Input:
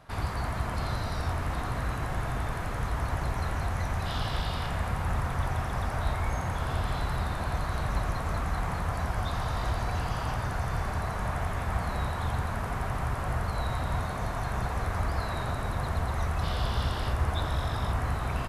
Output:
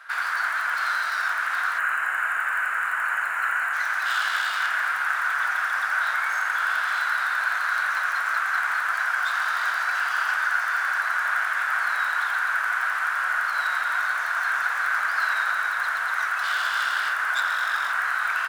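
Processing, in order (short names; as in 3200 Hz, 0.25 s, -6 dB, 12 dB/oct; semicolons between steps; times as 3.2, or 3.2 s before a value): tracing distortion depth 0.078 ms; resonant high-pass 1500 Hz, resonance Q 6.6; spectral gain 1.78–3.73, 3100–6600 Hz -12 dB; gain +5 dB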